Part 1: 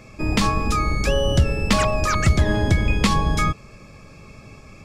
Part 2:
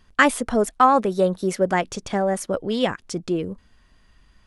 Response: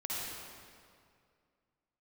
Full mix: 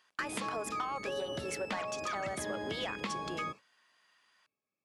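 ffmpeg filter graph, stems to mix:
-filter_complex "[0:a]acrossover=split=4200[s0][s1];[s1]acompressor=threshold=0.00891:ratio=4:attack=1:release=60[s2];[s0][s2]amix=inputs=2:normalize=0,highpass=270,volume=0.266[s3];[1:a]highpass=810,acompressor=threshold=0.0708:ratio=3,asoftclip=type=tanh:threshold=0.0944,volume=0.631,asplit=2[s4][s5];[s5]apad=whole_len=213638[s6];[s3][s6]sidechaingate=range=0.0224:threshold=0.00158:ratio=16:detection=peak[s7];[s7][s4]amix=inputs=2:normalize=0,highshelf=f=8000:g=-4,acompressor=threshold=0.0224:ratio=6"

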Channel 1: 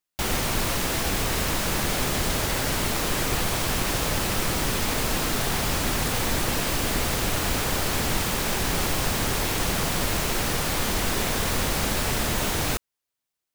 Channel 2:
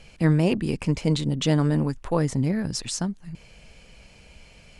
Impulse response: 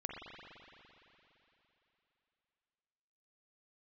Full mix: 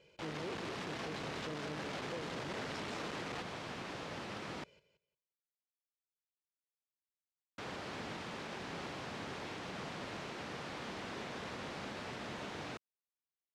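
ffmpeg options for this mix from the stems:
-filter_complex "[0:a]lowpass=f=3400:p=1,volume=0.631,asplit=3[s0][s1][s2];[s0]atrim=end=4.64,asetpts=PTS-STARTPTS,afade=t=out:st=4.636:d=0.004:c=hsin[s3];[s1]atrim=start=4.64:end=7.58,asetpts=PTS-STARTPTS,volume=0[s4];[s2]atrim=start=7.58,asetpts=PTS-STARTPTS,afade=t=in:d=0.004:c=hsin[s5];[s3][s4][s5]concat=n=3:v=0:a=1[s6];[1:a]equalizer=f=350:t=o:w=1.3:g=10,aecho=1:1:2:0.78,volume=0.141,asplit=3[s7][s8][s9];[s8]volume=0.335[s10];[s9]apad=whole_len=597215[s11];[s6][s11]sidechaingate=range=0.282:threshold=0.00178:ratio=16:detection=peak[s12];[s10]aecho=0:1:177|354|531:1|0.18|0.0324[s13];[s12][s7][s13]amix=inputs=3:normalize=0,asoftclip=type=hard:threshold=0.0335,highpass=150,lowpass=5300,alimiter=level_in=2.99:limit=0.0631:level=0:latency=1:release=51,volume=0.335"

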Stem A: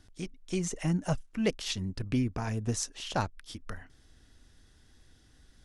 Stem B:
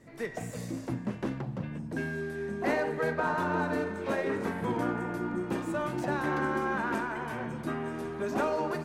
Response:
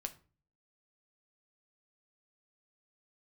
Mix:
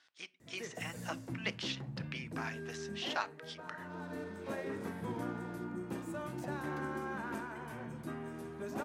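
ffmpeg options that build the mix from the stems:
-filter_complex "[0:a]highpass=1300,deesser=0.9,lowpass=3900,volume=0.944,asplit=3[s0][s1][s2];[s1]volume=0.596[s3];[1:a]highshelf=f=7700:g=10,adelay=400,volume=0.668,afade=t=out:st=2.71:d=0.7:silence=0.375837,asplit=2[s4][s5];[s5]volume=0.224[s6];[s2]apad=whole_len=407721[s7];[s4][s7]sidechaincompress=threshold=0.002:ratio=10:attack=16:release=700[s8];[2:a]atrim=start_sample=2205[s9];[s3][s6]amix=inputs=2:normalize=0[s10];[s10][s9]afir=irnorm=-1:irlink=0[s11];[s0][s8][s11]amix=inputs=3:normalize=0,highpass=60,lowshelf=f=180:g=7"

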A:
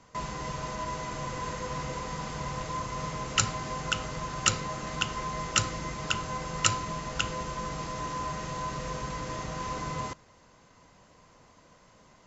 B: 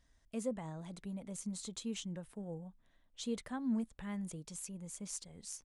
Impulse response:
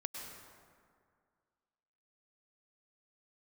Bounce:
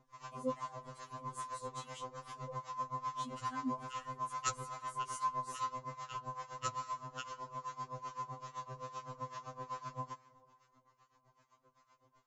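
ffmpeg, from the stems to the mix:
-filter_complex "[0:a]equalizer=f=1100:w=2.6:g=10,aeval=exprs='val(0)*pow(10,-20*(0.5-0.5*cos(2*PI*7.8*n/s))/20)':c=same,volume=0.447,asplit=2[s0][s1];[s1]volume=0.266[s2];[1:a]bandreject=f=390:w=12,volume=0.841[s3];[2:a]atrim=start_sample=2205[s4];[s2][s4]afir=irnorm=-1:irlink=0[s5];[s0][s3][s5]amix=inputs=3:normalize=0,acrossover=split=910[s6][s7];[s6]aeval=exprs='val(0)*(1-0.7/2+0.7/2*cos(2*PI*2.4*n/s))':c=same[s8];[s7]aeval=exprs='val(0)*(1-0.7/2-0.7/2*cos(2*PI*2.4*n/s))':c=same[s9];[s8][s9]amix=inputs=2:normalize=0,afftfilt=real='re*2.45*eq(mod(b,6),0)':imag='im*2.45*eq(mod(b,6),0)':win_size=2048:overlap=0.75"

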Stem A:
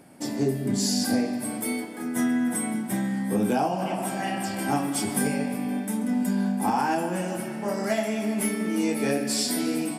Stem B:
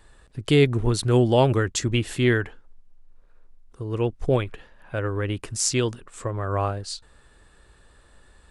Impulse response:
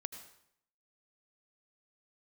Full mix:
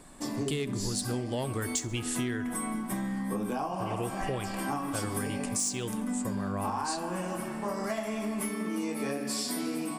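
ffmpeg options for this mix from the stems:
-filter_complex "[0:a]equalizer=f=1100:t=o:w=0.23:g=14.5,volume=0.668[s0];[1:a]equalizer=f=8300:t=o:w=1.6:g=15,asoftclip=type=tanh:threshold=0.398,volume=0.531,asplit=2[s1][s2];[s2]volume=0.0891,aecho=0:1:65|130|195|260|325|390|455:1|0.47|0.221|0.104|0.0488|0.0229|0.0108[s3];[s0][s1][s3]amix=inputs=3:normalize=0,acompressor=threshold=0.0355:ratio=6"

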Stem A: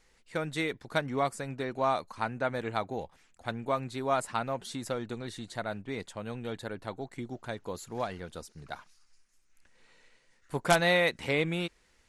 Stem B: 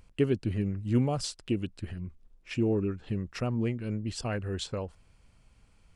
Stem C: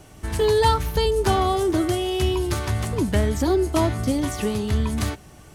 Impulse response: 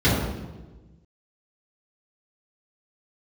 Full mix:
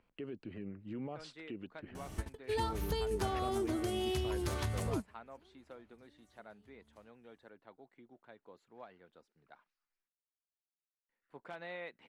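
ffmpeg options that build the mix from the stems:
-filter_complex "[0:a]adelay=800,volume=0.126,asplit=3[s0][s1][s2];[s0]atrim=end=10.09,asetpts=PTS-STARTPTS,afade=t=out:st=10.086:d=0.004:c=hsin[s3];[s1]atrim=start=10.09:end=11.09,asetpts=PTS-STARTPTS,volume=0[s4];[s2]atrim=start=11.09,asetpts=PTS-STARTPTS,afade=t=in:d=0.004:c=hsin[s5];[s3][s4][s5]concat=n=3:v=0:a=1[s6];[1:a]volume=0.447,asplit=2[s7][s8];[2:a]acompressor=threshold=0.0316:ratio=6,adelay=1950,volume=0.708[s9];[s8]apad=whole_len=330489[s10];[s9][s10]sidechaingate=range=0.0224:threshold=0.00141:ratio=16:detection=peak[s11];[s6][s7]amix=inputs=2:normalize=0,acrossover=split=190 3500:gain=0.158 1 0.0891[s12][s13][s14];[s12][s13][s14]amix=inputs=3:normalize=0,alimiter=level_in=3.35:limit=0.0631:level=0:latency=1:release=60,volume=0.299,volume=1[s15];[s11][s15]amix=inputs=2:normalize=0"

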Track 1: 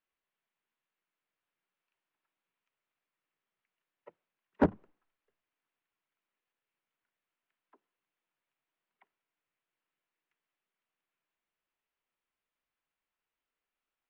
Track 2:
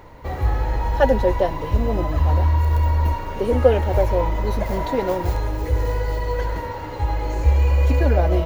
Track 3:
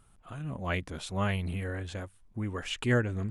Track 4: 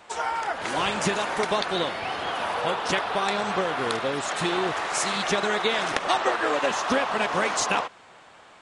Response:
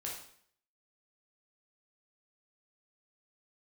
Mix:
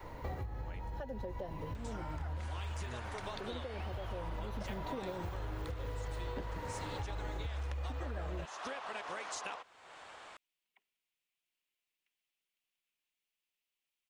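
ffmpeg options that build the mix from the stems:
-filter_complex "[0:a]highshelf=f=2000:t=q:w=1.5:g=10,adelay=1750,volume=0.422[s0];[1:a]adynamicequalizer=threshold=0.02:dfrequency=150:dqfactor=0.77:tfrequency=150:tqfactor=0.77:attack=5:release=100:ratio=0.375:range=3.5:mode=boostabove:tftype=bell,acompressor=threshold=0.112:ratio=6,alimiter=limit=0.15:level=0:latency=1:release=392,volume=0.668[s1];[2:a]volume=0.158,asplit=3[s2][s3][s4];[s2]atrim=end=0.99,asetpts=PTS-STARTPTS,afade=t=out:st=0.986:d=0.004:c=hsin[s5];[s3]atrim=start=0.99:end=1.51,asetpts=PTS-STARTPTS,volume=0[s6];[s4]atrim=start=1.51,asetpts=PTS-STARTPTS,afade=t=in:d=0.004:c=hsin[s7];[s5][s6][s7]concat=n=3:v=0:a=1,asplit=2[s8][s9];[3:a]equalizer=f=180:t=o:w=1.6:g=-8.5,acompressor=mode=upward:threshold=0.0398:ratio=2.5,adelay=1750,volume=0.237[s10];[s9]apad=whole_len=373050[s11];[s1][s11]sidechaincompress=threshold=0.00316:ratio=8:attack=16:release=1410[s12];[s0][s12][s8][s10]amix=inputs=4:normalize=0,acompressor=threshold=0.0112:ratio=4"

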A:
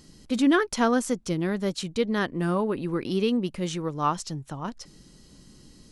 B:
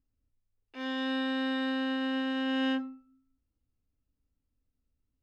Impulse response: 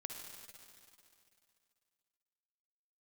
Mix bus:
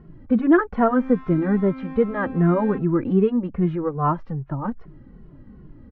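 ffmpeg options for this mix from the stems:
-filter_complex "[0:a]acontrast=57,volume=1.12[s0];[1:a]bandreject=f=50:t=h:w=6,bandreject=f=100:t=h:w=6,bandreject=f=150:t=h:w=6,bandreject=f=200:t=h:w=6,bandreject=f=250:t=h:w=6,aeval=exprs='(mod(20*val(0)+1,2)-1)/20':c=same,volume=0.891[s1];[s0][s1]amix=inputs=2:normalize=0,lowpass=f=1700:w=0.5412,lowpass=f=1700:w=1.3066,lowshelf=f=190:g=6.5,asplit=2[s2][s3];[s3]adelay=2.3,afreqshift=-2.5[s4];[s2][s4]amix=inputs=2:normalize=1"

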